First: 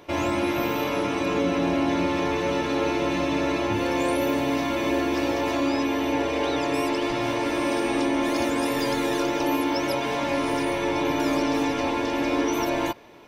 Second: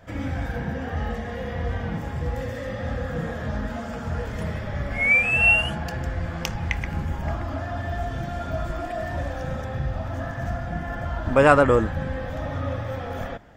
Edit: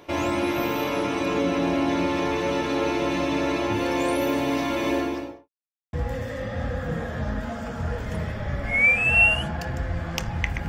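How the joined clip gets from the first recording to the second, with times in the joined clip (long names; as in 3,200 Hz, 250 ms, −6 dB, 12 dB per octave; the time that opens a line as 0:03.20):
first
0:04.90–0:05.49: fade out and dull
0:05.49–0:05.93: silence
0:05.93: continue with second from 0:02.20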